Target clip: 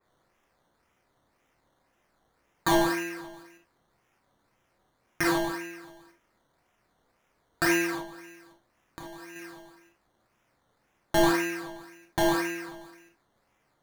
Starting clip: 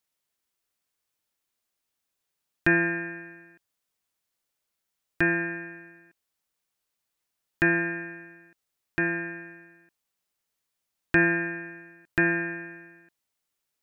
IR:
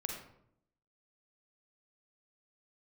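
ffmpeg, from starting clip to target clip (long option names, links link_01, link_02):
-filter_complex "[0:a]asettb=1/sr,asplit=3[link_01][link_02][link_03];[link_01]atrim=end=7.984[link_04];[link_02]atrim=start=7.98:end=9.36,asetpts=PTS-STARTPTS,afade=type=in:duration=0.004:curve=qsin,afade=type=out:start_time=1.376:duration=0.004:curve=qsin,acompressor=threshold=-39dB:ratio=20[link_05];[link_03]atrim=start=9.356[link_06];[link_04][link_05]acrossfade=duration=0.004:curve1=hsin:curve2=qsin[link_07];[link_07][link_06]acrossfade=duration=0.004:curve1=qsin:curve2=hsin,crystalizer=i=3:c=0,acrusher=samples=14:mix=1:aa=0.000001:lfo=1:lforange=8.4:lforate=1.9[link_08];[1:a]atrim=start_sample=2205,atrim=end_sample=6174,asetrate=70560,aresample=44100[link_09];[link_08][link_09]afir=irnorm=-1:irlink=0,adynamicequalizer=threshold=0.00355:dfrequency=3600:dqfactor=0.7:tfrequency=3600:tqfactor=0.7:attack=5:release=100:ratio=0.375:range=2.5:mode=cutabove:tftype=highshelf"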